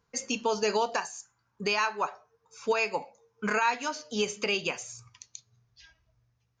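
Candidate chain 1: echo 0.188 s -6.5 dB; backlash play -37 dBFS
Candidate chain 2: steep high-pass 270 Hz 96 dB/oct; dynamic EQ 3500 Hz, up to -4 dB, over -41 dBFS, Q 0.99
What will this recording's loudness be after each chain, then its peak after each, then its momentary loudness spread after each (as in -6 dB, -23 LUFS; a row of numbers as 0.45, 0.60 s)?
-29.5, -31.0 LUFS; -15.0, -15.5 dBFS; 15, 17 LU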